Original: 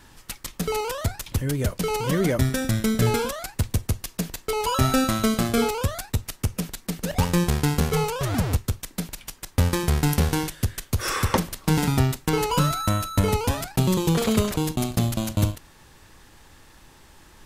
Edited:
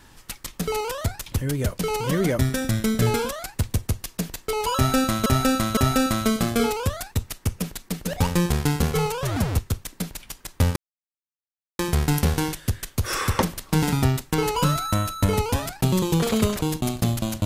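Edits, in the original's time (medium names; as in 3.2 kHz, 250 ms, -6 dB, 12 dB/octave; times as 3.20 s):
4.75–5.26 s: loop, 3 plays
9.74 s: insert silence 1.03 s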